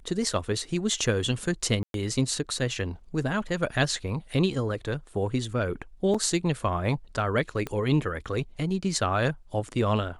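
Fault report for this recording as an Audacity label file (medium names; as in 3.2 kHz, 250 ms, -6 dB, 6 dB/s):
1.830000	1.940000	dropout 112 ms
6.140000	6.150000	dropout 5.3 ms
7.670000	7.670000	pop -18 dBFS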